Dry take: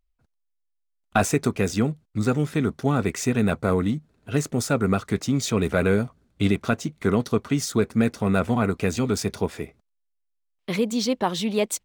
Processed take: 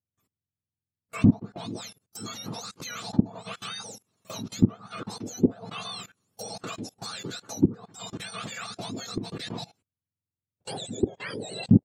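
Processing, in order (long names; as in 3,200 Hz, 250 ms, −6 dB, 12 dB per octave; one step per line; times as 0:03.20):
frequency axis turned over on the octave scale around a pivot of 1,300 Hz
output level in coarse steps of 20 dB
treble cut that deepens with the level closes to 770 Hz, closed at −28.5 dBFS
level +6 dB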